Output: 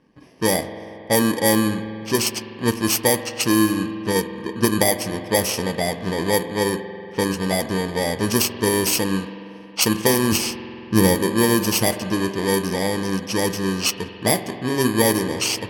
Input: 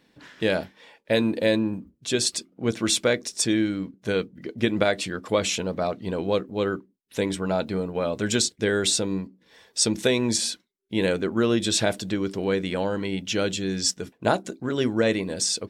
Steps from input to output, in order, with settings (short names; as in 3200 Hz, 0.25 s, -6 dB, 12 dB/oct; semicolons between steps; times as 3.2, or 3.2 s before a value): FFT order left unsorted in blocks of 32 samples; 10.32–11.15 low shelf 200 Hz +11 dB; spring tank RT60 3.3 s, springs 46 ms, chirp 30 ms, DRR 10 dB; low-pass opened by the level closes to 2800 Hz, open at -17.5 dBFS; gain +5 dB